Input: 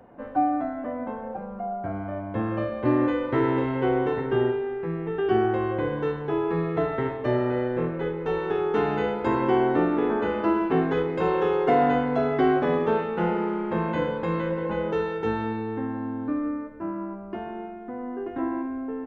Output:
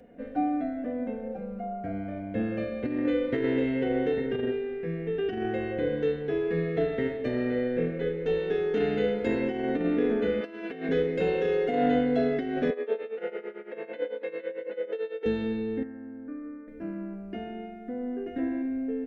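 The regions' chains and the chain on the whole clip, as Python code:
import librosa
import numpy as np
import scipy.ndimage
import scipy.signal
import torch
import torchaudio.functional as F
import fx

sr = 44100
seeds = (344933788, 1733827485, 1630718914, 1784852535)

y = fx.chain(x, sr, fx.highpass(hz=620.0, slope=6),
    fx.over_compress(threshold_db=-31.0, ratio=-0.5), at=(10.41, 10.89))
y = fx.chain(y, sr, fx.highpass(hz=380.0, slope=24),
    fx.tremolo(hz=9.0, depth=0.83),
    fx.air_absorb(metres=240.0), at=(12.7, 15.26))
y = fx.chain(y, sr, fx.ladder_lowpass(hz=1900.0, resonance_pct=40),
    fx.low_shelf(hz=330.0, db=-4.5), at=(15.83, 16.68))
y = fx.curve_eq(y, sr, hz=(600.0, 1000.0, 1800.0), db=(0, -20, 2))
y = fx.over_compress(y, sr, threshold_db=-23.0, ratio=-0.5)
y = y + 0.51 * np.pad(y, (int(4.2 * sr / 1000.0), 0))[:len(y)]
y = F.gain(torch.from_numpy(y), -2.5).numpy()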